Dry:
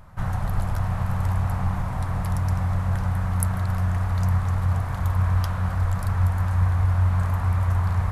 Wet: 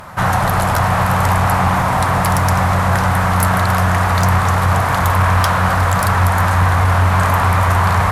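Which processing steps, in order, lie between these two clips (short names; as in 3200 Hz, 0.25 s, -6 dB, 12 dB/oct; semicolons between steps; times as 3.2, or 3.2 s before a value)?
HPF 450 Hz 6 dB/oct; in parallel at -6.5 dB: sine folder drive 19 dB, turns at -6 dBFS; on the sum: gain +3.5 dB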